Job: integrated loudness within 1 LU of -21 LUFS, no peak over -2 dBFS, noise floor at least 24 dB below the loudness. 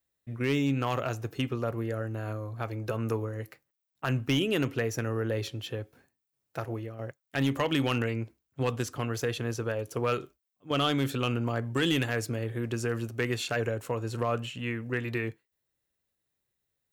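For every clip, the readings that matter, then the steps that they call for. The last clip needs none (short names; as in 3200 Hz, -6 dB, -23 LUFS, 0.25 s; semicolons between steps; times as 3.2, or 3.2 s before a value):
clipped 0.2%; flat tops at -18.5 dBFS; loudness -31.0 LUFS; peak -18.5 dBFS; loudness target -21.0 LUFS
-> clip repair -18.5 dBFS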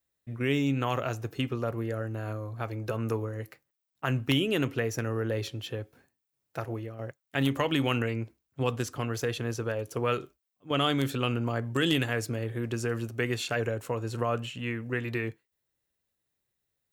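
clipped 0.0%; loudness -31.0 LUFS; peak -10.0 dBFS; loudness target -21.0 LUFS
-> gain +10 dB; limiter -2 dBFS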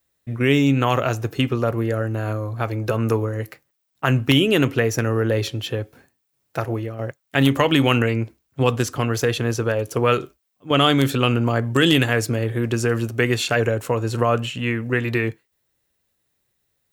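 loudness -21.0 LUFS; peak -2.0 dBFS; noise floor -73 dBFS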